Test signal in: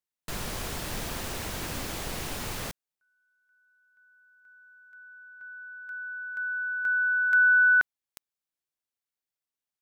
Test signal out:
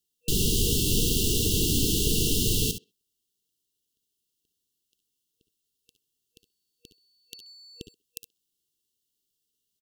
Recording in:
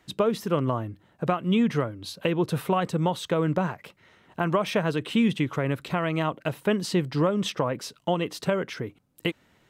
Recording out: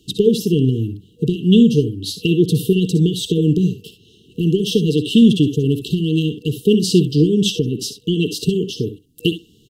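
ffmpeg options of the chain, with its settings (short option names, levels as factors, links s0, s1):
-filter_complex "[0:a]asplit=2[s0][s1];[s1]aecho=0:1:60|70:0.224|0.224[s2];[s0][s2]amix=inputs=2:normalize=0,acontrast=61,asplit=2[s3][s4];[s4]adelay=130,highpass=300,lowpass=3400,asoftclip=type=hard:threshold=0.211,volume=0.0355[s5];[s3][s5]amix=inputs=2:normalize=0,afftfilt=real='re*(1-between(b*sr/4096,480,2700))':imag='im*(1-between(b*sr/4096,480,2700))':win_size=4096:overlap=0.75,volume=1.78"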